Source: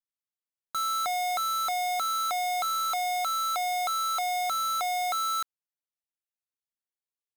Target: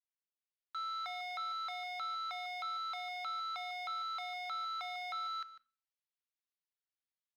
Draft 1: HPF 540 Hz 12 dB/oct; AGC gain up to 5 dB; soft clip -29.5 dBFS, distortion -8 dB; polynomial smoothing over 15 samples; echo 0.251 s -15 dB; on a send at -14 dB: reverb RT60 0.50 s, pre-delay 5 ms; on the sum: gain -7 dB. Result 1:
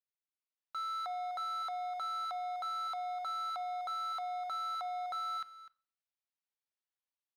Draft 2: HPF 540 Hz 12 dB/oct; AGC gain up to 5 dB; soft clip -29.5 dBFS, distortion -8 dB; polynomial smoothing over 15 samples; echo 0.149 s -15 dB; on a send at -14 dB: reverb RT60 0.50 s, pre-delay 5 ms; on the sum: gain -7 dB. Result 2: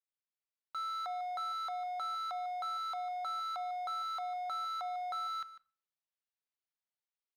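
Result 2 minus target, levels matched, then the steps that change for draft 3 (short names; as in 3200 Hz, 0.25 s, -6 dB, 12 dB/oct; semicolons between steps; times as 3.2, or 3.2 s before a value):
500 Hz band +4.5 dB
change: HPF 1400 Hz 12 dB/oct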